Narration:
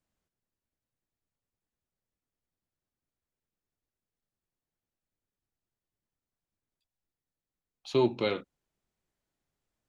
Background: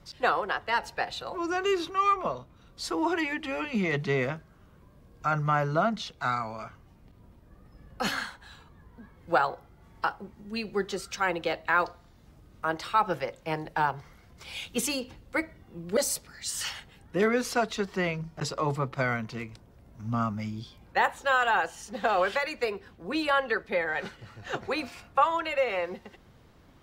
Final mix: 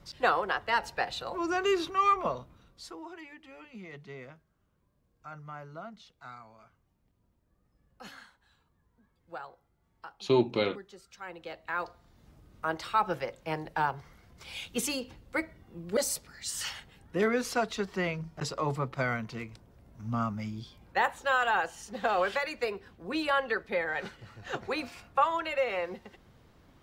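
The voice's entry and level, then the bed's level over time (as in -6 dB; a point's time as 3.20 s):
2.35 s, +1.0 dB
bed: 2.52 s -0.5 dB
3.06 s -18 dB
11.08 s -18 dB
12.24 s -2.5 dB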